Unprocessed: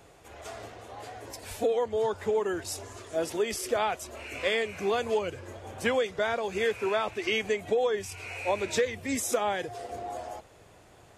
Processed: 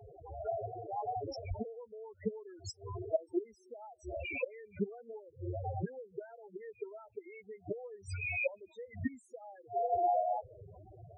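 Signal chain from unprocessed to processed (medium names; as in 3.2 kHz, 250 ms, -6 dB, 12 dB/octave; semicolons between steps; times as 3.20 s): inverted gate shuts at -24 dBFS, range -29 dB; loudest bins only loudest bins 4; trim +9 dB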